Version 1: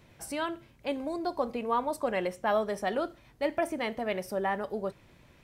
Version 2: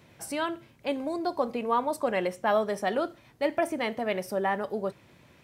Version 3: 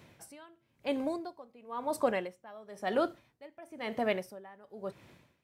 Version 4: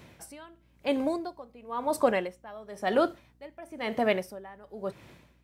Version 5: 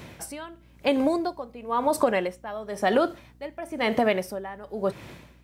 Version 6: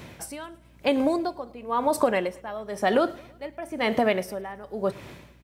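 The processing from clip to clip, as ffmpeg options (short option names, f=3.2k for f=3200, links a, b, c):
-af "highpass=93,volume=2.5dB"
-af "aeval=exprs='val(0)*pow(10,-25*(0.5-0.5*cos(2*PI*0.99*n/s))/20)':c=same"
-af "aeval=exprs='val(0)+0.000398*(sin(2*PI*60*n/s)+sin(2*PI*2*60*n/s)/2+sin(2*PI*3*60*n/s)/3+sin(2*PI*4*60*n/s)/4+sin(2*PI*5*60*n/s)/5)':c=same,volume=5dB"
-af "acompressor=threshold=-28dB:ratio=4,volume=9dB"
-af "aecho=1:1:108|216|324|432:0.0668|0.0368|0.0202|0.0111"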